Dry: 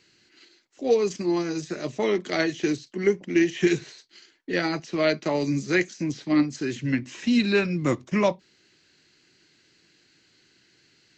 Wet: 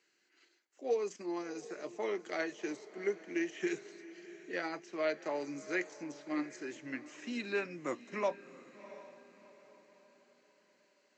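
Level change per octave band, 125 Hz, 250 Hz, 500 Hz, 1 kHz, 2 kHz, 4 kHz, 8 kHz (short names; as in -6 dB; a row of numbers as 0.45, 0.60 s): -25.5 dB, -16.0 dB, -11.5 dB, -9.5 dB, -11.0 dB, -16.5 dB, n/a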